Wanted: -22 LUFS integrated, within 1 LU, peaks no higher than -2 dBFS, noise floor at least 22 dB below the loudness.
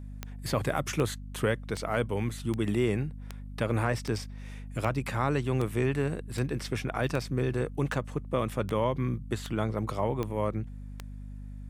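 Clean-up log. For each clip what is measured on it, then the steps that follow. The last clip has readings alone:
clicks found 15; hum 50 Hz; highest harmonic 250 Hz; hum level -38 dBFS; loudness -31.0 LUFS; peak level -12.5 dBFS; loudness target -22.0 LUFS
-> de-click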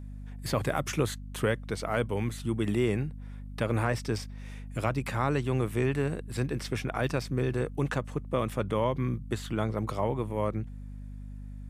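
clicks found 0; hum 50 Hz; highest harmonic 250 Hz; hum level -38 dBFS
-> hum notches 50/100/150/200/250 Hz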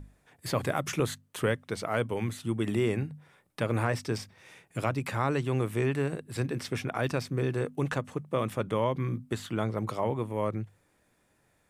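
hum not found; loudness -31.5 LUFS; peak level -13.5 dBFS; loudness target -22.0 LUFS
-> trim +9.5 dB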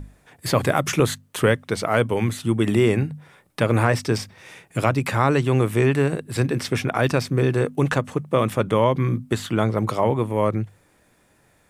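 loudness -22.0 LUFS; peak level -4.0 dBFS; noise floor -60 dBFS

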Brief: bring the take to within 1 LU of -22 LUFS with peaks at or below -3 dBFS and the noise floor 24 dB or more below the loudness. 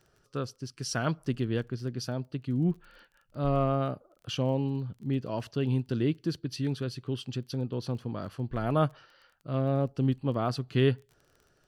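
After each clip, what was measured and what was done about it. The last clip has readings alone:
tick rate 21 per s; loudness -31.0 LUFS; peak level -13.0 dBFS; loudness target -22.0 LUFS
-> de-click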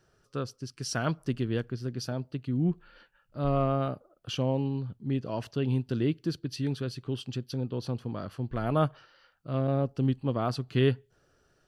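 tick rate 0 per s; loudness -31.0 LUFS; peak level -13.0 dBFS; loudness target -22.0 LUFS
-> trim +9 dB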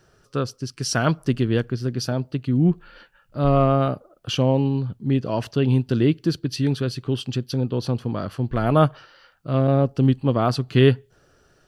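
loudness -22.0 LUFS; peak level -4.0 dBFS; noise floor -60 dBFS

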